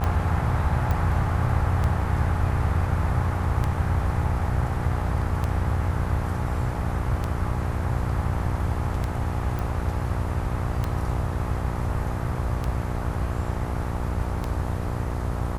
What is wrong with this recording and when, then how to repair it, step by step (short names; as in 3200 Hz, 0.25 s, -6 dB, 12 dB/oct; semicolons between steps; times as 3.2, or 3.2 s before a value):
buzz 60 Hz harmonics 22 -30 dBFS
tick 33 1/3 rpm -14 dBFS
0.91 pop -15 dBFS
9.59 pop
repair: de-click; de-hum 60 Hz, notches 22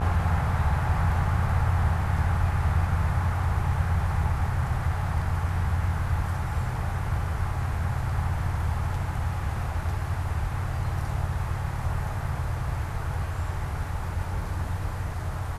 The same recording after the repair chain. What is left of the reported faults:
none